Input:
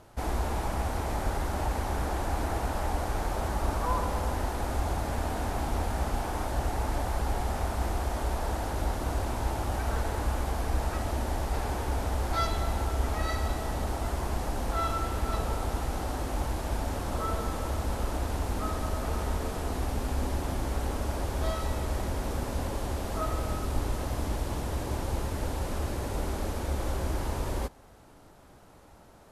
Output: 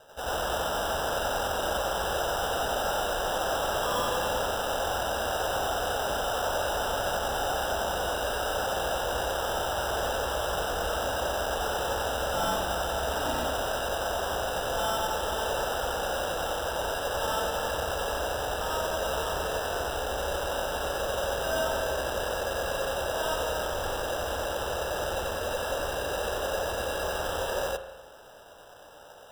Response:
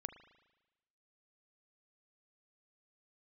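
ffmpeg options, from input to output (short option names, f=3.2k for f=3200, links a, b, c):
-filter_complex "[0:a]lowshelf=f=360:t=q:w=3:g=-13,acrusher=samples=20:mix=1:aa=0.000001,asoftclip=type=hard:threshold=-28.5dB,asplit=2[a][b];[1:a]atrim=start_sample=2205,adelay=91[c];[b][c]afir=irnorm=-1:irlink=0,volume=7dB[d];[a][d]amix=inputs=2:normalize=0,volume=-1.5dB"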